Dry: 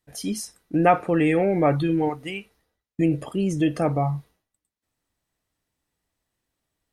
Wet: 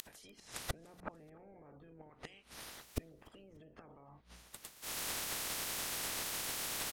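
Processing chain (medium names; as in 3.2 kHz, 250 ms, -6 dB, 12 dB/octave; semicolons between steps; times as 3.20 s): spectral peaks clipped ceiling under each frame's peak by 23 dB; low-pass that closes with the level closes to 660 Hz, closed at -17.5 dBFS; hum notches 60/120/180/240 Hz; in parallel at -2.5 dB: upward compressor, threshold -25 dBFS; on the sum: peak limiter -17.5 dBFS, peak gain reduction 11 dB; compression 8:1, threshold -40 dBFS, peak gain reduction 18 dB; inverted gate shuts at -35 dBFS, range -28 dB; on a send: feedback delay 294 ms, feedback 33%, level -24 dB; on the sum: trim +12 dB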